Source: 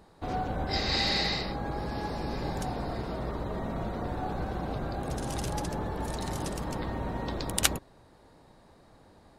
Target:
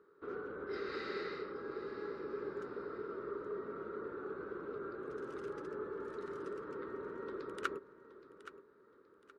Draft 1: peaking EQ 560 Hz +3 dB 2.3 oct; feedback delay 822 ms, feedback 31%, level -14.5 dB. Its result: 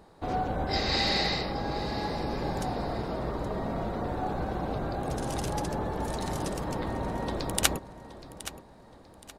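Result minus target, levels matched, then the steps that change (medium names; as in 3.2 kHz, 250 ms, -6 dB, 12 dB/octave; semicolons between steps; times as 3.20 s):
1 kHz band +3.0 dB
add first: two resonant band-passes 740 Hz, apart 1.7 oct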